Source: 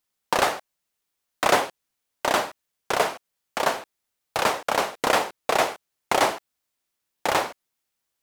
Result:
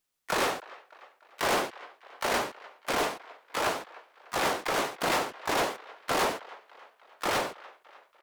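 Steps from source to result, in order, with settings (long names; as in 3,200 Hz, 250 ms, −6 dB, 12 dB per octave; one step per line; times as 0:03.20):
delay with a band-pass on its return 300 ms, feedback 54%, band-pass 1,400 Hz, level −23 dB
pitch-shifted copies added −7 semitones −2 dB, +7 semitones −1 dB, +12 semitones −18 dB
soft clipping −17 dBFS, distortion −9 dB
level −5 dB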